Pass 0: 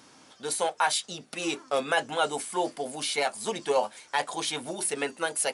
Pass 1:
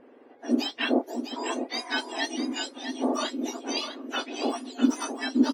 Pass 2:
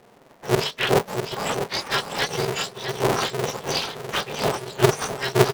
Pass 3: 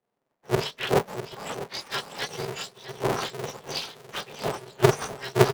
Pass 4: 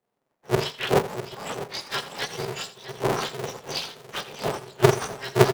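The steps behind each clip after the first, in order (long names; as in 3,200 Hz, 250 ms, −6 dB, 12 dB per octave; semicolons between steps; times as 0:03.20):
frequency axis turned over on the octave scale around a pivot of 1,600 Hz; low-pass that shuts in the quiet parts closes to 1,800 Hz, open at −23 dBFS; single-tap delay 652 ms −8.5 dB
sub-harmonics by changed cycles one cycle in 2, inverted; automatic gain control gain up to 5 dB
multiband upward and downward expander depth 70%; level −6.5 dB
single-tap delay 83 ms −14.5 dB; level +1.5 dB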